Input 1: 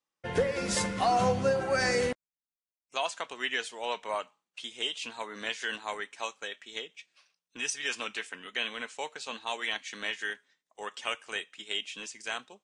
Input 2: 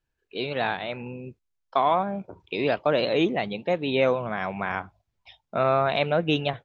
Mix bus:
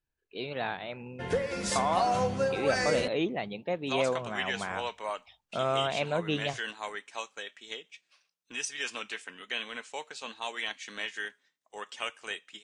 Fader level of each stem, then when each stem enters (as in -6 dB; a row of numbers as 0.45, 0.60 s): -2.0, -7.0 dB; 0.95, 0.00 s